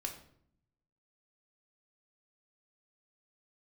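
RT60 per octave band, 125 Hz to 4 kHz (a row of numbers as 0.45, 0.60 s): 1.2, 1.0, 0.70, 0.60, 0.50, 0.45 s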